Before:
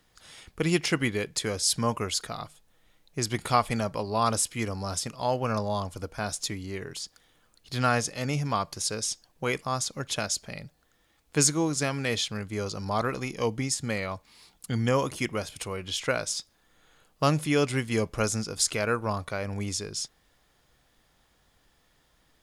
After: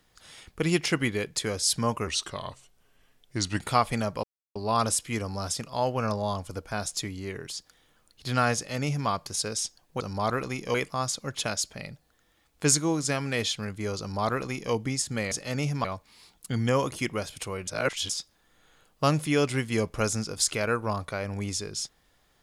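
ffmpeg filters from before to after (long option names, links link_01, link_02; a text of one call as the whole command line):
ffmpeg -i in.wav -filter_complex "[0:a]asplit=10[link_01][link_02][link_03][link_04][link_05][link_06][link_07][link_08][link_09][link_10];[link_01]atrim=end=2.074[link_11];[link_02]atrim=start=2.07:end=3.39,asetpts=PTS-STARTPTS,asetrate=37926,aresample=44100,atrim=end_sample=67688,asetpts=PTS-STARTPTS[link_12];[link_03]atrim=start=3.386:end=4.02,asetpts=PTS-STARTPTS,afade=type=out:start_time=0.63:duration=0.004:curve=hsin,apad=pad_dur=0.32[link_13];[link_04]atrim=start=4.02:end=9.472,asetpts=PTS-STARTPTS,afade=type=in:duration=0.004:curve=hsin[link_14];[link_05]atrim=start=12.718:end=13.462[link_15];[link_06]atrim=start=9.468:end=14.042[link_16];[link_07]atrim=start=8.018:end=8.552[link_17];[link_08]atrim=start=14.038:end=15.872[link_18];[link_09]atrim=start=15.868:end=16.292,asetpts=PTS-STARTPTS,areverse[link_19];[link_10]atrim=start=16.288[link_20];[link_11][link_12]acrossfade=duration=0.004:curve1=hsin:curve2=hsin[link_21];[link_13][link_14]concat=n=2:v=0:a=1[link_22];[link_21][link_22]acrossfade=duration=0.004:curve1=hsin:curve2=hsin[link_23];[link_23][link_15]acrossfade=duration=0.004:curve1=hsin:curve2=hsin[link_24];[link_24][link_16]acrossfade=duration=0.004:curve1=hsin:curve2=hsin[link_25];[link_25][link_17]acrossfade=duration=0.004:curve1=hsin:curve2=hsin[link_26];[link_26][link_18]acrossfade=duration=0.004:curve1=hsin:curve2=hsin[link_27];[link_27][link_19]acrossfade=duration=0.004:curve1=hsin:curve2=hsin[link_28];[link_28][link_20]acrossfade=duration=0.004:curve1=hsin:curve2=hsin" out.wav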